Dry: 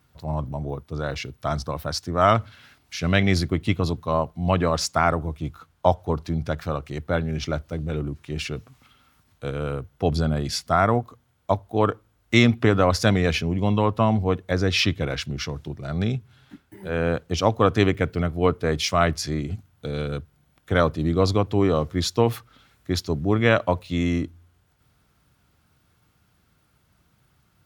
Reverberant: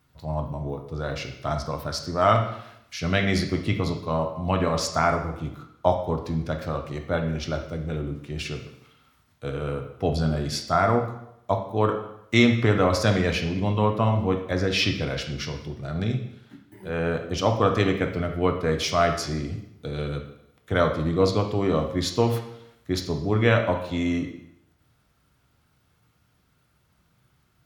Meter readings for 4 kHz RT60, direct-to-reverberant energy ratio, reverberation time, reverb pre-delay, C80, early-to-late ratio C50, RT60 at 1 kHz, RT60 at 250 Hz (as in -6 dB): 0.75 s, 3.5 dB, 0.80 s, 5 ms, 10.5 dB, 7.5 dB, 0.80 s, 0.75 s